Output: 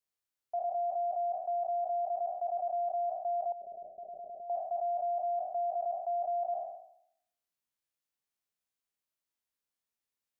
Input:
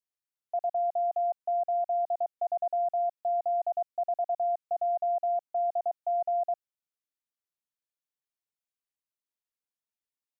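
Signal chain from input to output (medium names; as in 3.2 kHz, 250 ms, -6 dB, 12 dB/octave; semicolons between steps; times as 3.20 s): spectral sustain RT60 0.71 s; 3.52–4.50 s: steep low-pass 510 Hz 36 dB/octave; in parallel at +2 dB: peak limiter -36 dBFS, peak gain reduction 13.5 dB; on the sum: trim -7 dB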